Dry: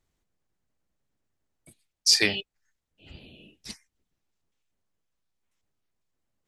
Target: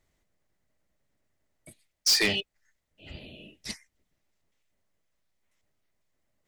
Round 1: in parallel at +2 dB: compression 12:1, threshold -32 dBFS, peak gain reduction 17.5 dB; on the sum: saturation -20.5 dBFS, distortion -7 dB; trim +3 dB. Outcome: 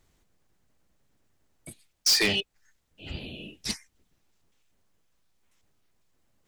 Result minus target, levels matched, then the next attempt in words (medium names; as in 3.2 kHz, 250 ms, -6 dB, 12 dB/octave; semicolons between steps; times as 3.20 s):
1 kHz band +3.0 dB
in parallel at +2 dB: compression 12:1, threshold -32 dBFS, peak gain reduction 17.5 dB + two resonant band-passes 1.1 kHz, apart 1.7 oct; on the sum: saturation -20.5 dBFS, distortion -8 dB; trim +3 dB